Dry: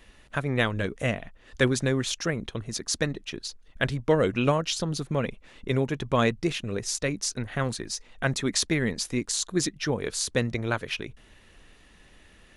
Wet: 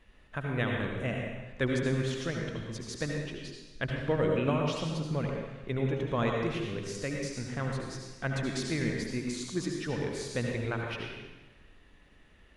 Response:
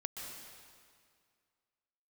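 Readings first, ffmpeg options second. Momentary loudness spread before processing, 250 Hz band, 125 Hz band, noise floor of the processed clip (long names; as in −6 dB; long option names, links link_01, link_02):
10 LU, −4.0 dB, −3.0 dB, −59 dBFS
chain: -filter_complex "[0:a]bass=frequency=250:gain=2,treble=frequency=4000:gain=-9[link_01];[1:a]atrim=start_sample=2205,asetrate=74970,aresample=44100[link_02];[link_01][link_02]afir=irnorm=-1:irlink=0"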